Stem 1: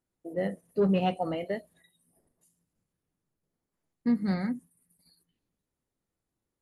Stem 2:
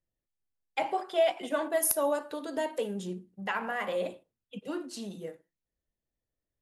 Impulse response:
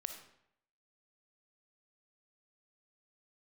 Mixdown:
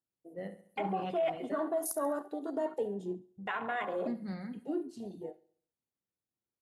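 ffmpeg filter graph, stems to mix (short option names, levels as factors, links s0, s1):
-filter_complex "[0:a]highpass=75,volume=0.266,asplit=2[s0][s1];[s1]volume=0.224[s2];[1:a]agate=range=0.0224:threshold=0.00316:ratio=3:detection=peak,afwtdn=0.0178,aecho=1:1:2.8:0.41,volume=0.891,asplit=2[s3][s4];[s4]volume=0.0944[s5];[s2][s5]amix=inputs=2:normalize=0,aecho=0:1:69|138|207|276|345|414:1|0.44|0.194|0.0852|0.0375|0.0165[s6];[s0][s3][s6]amix=inputs=3:normalize=0,alimiter=level_in=1.06:limit=0.0631:level=0:latency=1:release=54,volume=0.944"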